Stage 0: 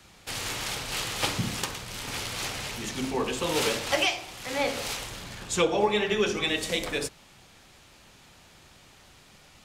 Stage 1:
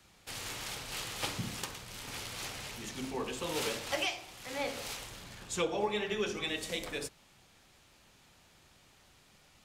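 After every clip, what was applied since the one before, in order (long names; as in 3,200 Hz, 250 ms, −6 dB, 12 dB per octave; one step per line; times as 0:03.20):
high-shelf EQ 12,000 Hz +4 dB
level −8.5 dB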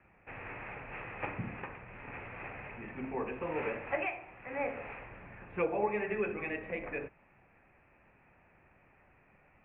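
Chebyshev low-pass with heavy ripple 2,600 Hz, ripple 3 dB
level +2 dB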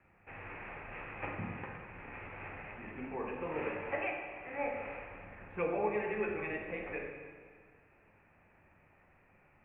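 convolution reverb RT60 1.8 s, pre-delay 6 ms, DRR 2 dB
level −3.5 dB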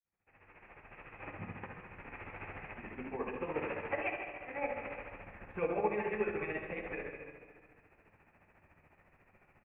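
fade in at the beginning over 2.33 s
amplitude tremolo 14 Hz, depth 64%
single-tap delay 164 ms −12 dB
level +2.5 dB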